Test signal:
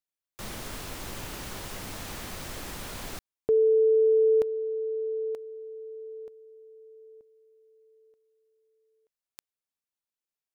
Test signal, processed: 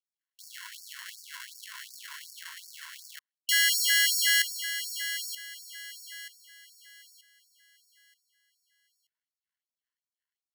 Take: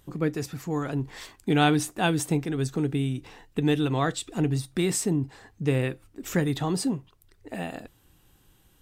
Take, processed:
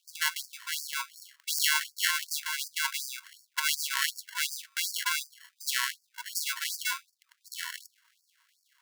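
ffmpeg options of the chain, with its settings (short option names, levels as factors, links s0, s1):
-af "acrusher=samples=36:mix=1:aa=0.000001,bandreject=f=75.25:t=h:w=4,bandreject=f=150.5:t=h:w=4,bandreject=f=225.75:t=h:w=4,bandreject=f=301:t=h:w=4,bandreject=f=376.25:t=h:w=4,bandreject=f=451.5:t=h:w=4,bandreject=f=526.75:t=h:w=4,bandreject=f=602:t=h:w=4,bandreject=f=677.25:t=h:w=4,afftfilt=real='re*gte(b*sr/1024,920*pow(4500/920,0.5+0.5*sin(2*PI*2.7*pts/sr)))':imag='im*gte(b*sr/1024,920*pow(4500/920,0.5+0.5*sin(2*PI*2.7*pts/sr)))':win_size=1024:overlap=0.75,volume=2"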